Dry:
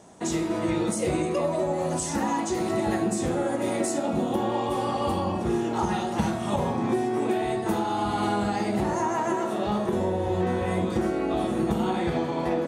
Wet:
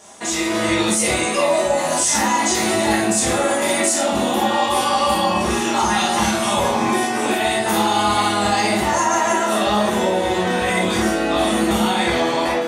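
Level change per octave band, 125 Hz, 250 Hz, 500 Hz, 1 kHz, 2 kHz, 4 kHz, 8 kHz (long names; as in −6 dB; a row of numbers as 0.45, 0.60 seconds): +1.5, +5.0, +6.5, +10.0, +15.0, +17.0, +16.0 decibels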